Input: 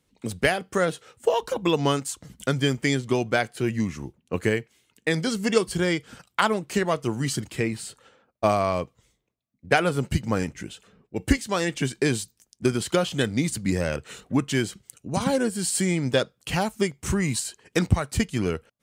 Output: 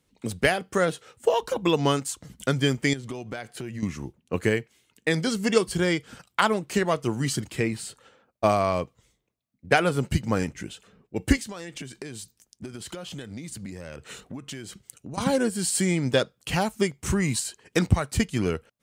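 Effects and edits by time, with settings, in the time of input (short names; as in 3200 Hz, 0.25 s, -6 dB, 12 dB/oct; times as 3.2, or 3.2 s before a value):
2.93–3.83 compressor, threshold -31 dBFS
11.43–15.18 compressor 16:1, threshold -33 dBFS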